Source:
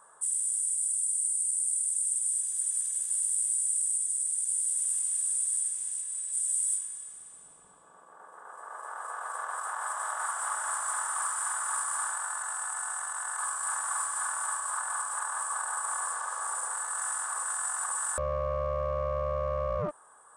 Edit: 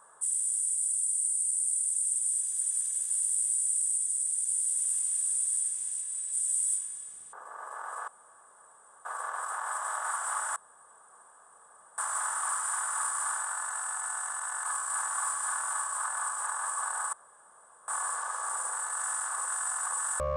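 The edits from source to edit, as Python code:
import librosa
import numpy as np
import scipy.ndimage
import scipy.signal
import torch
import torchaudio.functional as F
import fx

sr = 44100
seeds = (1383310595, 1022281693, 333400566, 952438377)

y = fx.edit(x, sr, fx.cut(start_s=7.33, length_s=1.12),
    fx.insert_room_tone(at_s=9.2, length_s=0.97),
    fx.insert_room_tone(at_s=10.71, length_s=1.42),
    fx.insert_room_tone(at_s=15.86, length_s=0.75), tone=tone)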